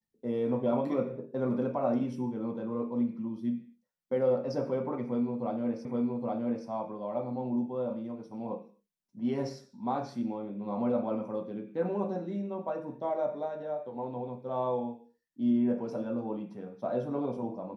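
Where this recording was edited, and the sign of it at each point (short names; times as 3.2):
5.85 repeat of the last 0.82 s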